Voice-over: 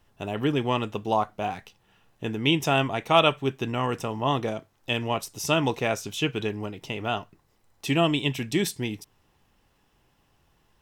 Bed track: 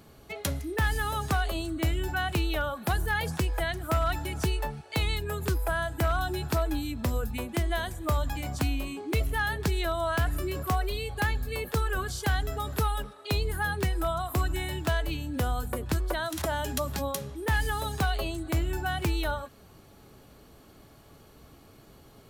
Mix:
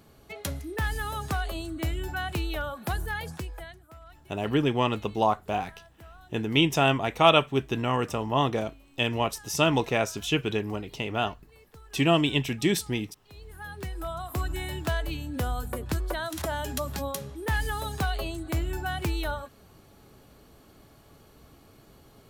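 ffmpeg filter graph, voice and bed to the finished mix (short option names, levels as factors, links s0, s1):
-filter_complex "[0:a]adelay=4100,volume=1.06[s0];[1:a]volume=9.44,afade=t=out:st=2.94:d=0.93:silence=0.0944061,afade=t=in:st=13.32:d=1.38:silence=0.0794328[s1];[s0][s1]amix=inputs=2:normalize=0"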